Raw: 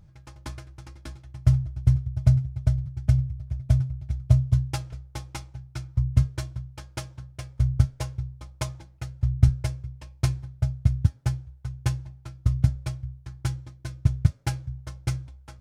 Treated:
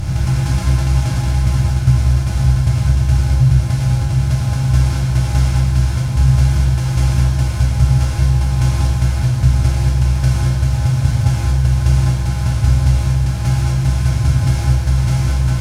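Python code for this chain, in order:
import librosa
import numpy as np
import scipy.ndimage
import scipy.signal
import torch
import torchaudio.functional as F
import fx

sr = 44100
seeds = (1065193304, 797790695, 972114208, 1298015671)

p1 = fx.bin_compress(x, sr, power=0.2)
p2 = fx.rider(p1, sr, range_db=10, speed_s=0.5)
p3 = p1 + (p2 * librosa.db_to_amplitude(1.0))
p4 = fx.rev_gated(p3, sr, seeds[0], gate_ms=260, shape='flat', drr_db=-5.5)
y = p4 * librosa.db_to_amplitude(-11.0)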